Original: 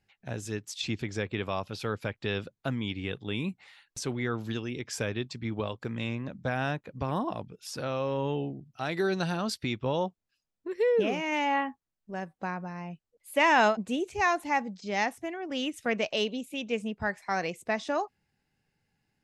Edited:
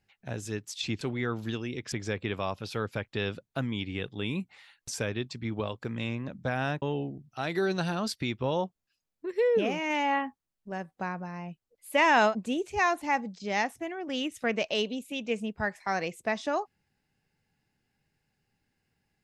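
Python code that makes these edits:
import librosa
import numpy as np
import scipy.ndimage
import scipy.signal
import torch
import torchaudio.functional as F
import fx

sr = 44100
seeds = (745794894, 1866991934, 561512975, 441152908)

y = fx.edit(x, sr, fx.move(start_s=4.03, length_s=0.91, to_s=1.01),
    fx.cut(start_s=6.82, length_s=1.42), tone=tone)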